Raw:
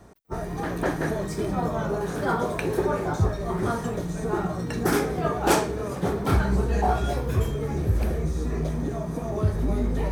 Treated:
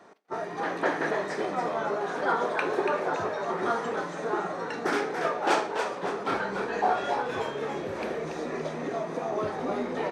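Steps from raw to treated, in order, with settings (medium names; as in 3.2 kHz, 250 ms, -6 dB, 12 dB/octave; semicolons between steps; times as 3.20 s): high-pass 250 Hz 12 dB/octave; tilt EQ +4 dB/octave; gain riding within 4 dB 2 s; tape spacing loss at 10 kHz 34 dB; frequency-shifting echo 284 ms, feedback 36%, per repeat +100 Hz, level -6.5 dB; reverberation RT60 0.30 s, pre-delay 25 ms, DRR 16.5 dB; trim +2.5 dB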